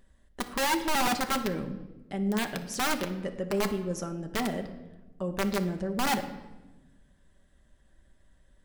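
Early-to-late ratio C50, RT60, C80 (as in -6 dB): 11.0 dB, 1.1 s, 13.5 dB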